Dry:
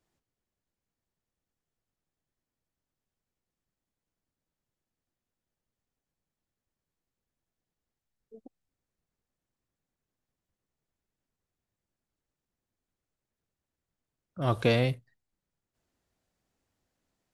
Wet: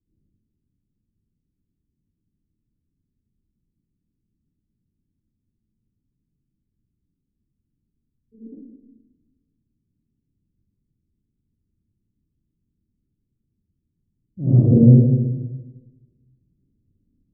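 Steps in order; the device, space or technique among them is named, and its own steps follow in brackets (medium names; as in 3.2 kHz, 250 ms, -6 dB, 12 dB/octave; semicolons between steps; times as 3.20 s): next room (low-pass 320 Hz 24 dB/octave; reverberation RT60 1.2 s, pre-delay 51 ms, DRR -11.5 dB); level-controlled noise filter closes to 350 Hz, open at -26 dBFS; trim +5.5 dB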